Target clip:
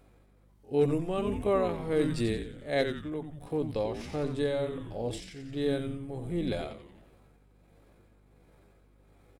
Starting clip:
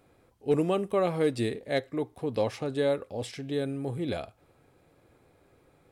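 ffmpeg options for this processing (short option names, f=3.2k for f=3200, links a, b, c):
-filter_complex "[0:a]atempo=0.63,asplit=2[a][b];[b]asplit=6[c][d][e][f][g][h];[c]adelay=89,afreqshift=-150,volume=-7dB[i];[d]adelay=178,afreqshift=-300,volume=-13.2dB[j];[e]adelay=267,afreqshift=-450,volume=-19.4dB[k];[f]adelay=356,afreqshift=-600,volume=-25.6dB[l];[g]adelay=445,afreqshift=-750,volume=-31.8dB[m];[h]adelay=534,afreqshift=-900,volume=-38dB[n];[i][j][k][l][m][n]amix=inputs=6:normalize=0[o];[a][o]amix=inputs=2:normalize=0,tremolo=f=1.4:d=0.55,aeval=exprs='val(0)+0.000891*(sin(2*PI*50*n/s)+sin(2*PI*2*50*n/s)/2+sin(2*PI*3*50*n/s)/3+sin(2*PI*4*50*n/s)/4+sin(2*PI*5*50*n/s)/5)':c=same"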